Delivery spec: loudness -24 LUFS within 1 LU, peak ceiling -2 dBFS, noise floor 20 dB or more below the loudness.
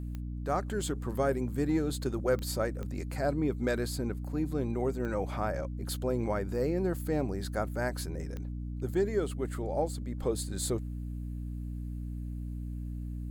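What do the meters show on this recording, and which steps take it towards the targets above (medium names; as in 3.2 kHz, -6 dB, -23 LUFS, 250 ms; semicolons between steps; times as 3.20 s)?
clicks found 5; hum 60 Hz; highest harmonic 300 Hz; hum level -35 dBFS; loudness -33.5 LUFS; peak level -17.0 dBFS; loudness target -24.0 LUFS
-> de-click; de-hum 60 Hz, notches 5; trim +9.5 dB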